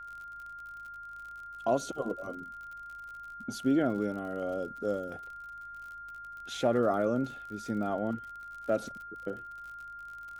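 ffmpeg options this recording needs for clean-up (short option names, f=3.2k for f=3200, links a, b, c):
-af "adeclick=t=4,bandreject=f=52.9:t=h:w=4,bandreject=f=105.8:t=h:w=4,bandreject=f=158.7:t=h:w=4,bandreject=f=211.6:t=h:w=4,bandreject=f=1.4k:w=30,agate=range=-21dB:threshold=-37dB"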